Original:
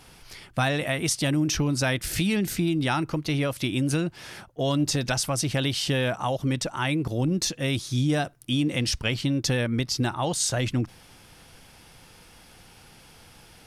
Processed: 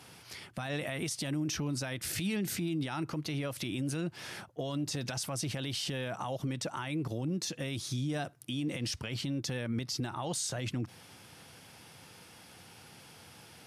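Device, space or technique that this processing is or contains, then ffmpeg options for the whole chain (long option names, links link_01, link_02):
podcast mastering chain: -af "highpass=frequency=86:width=0.5412,highpass=frequency=86:width=1.3066,acompressor=threshold=-26dB:ratio=3,alimiter=limit=-24dB:level=0:latency=1:release=55,volume=-1.5dB" -ar 32000 -c:a libmp3lame -b:a 112k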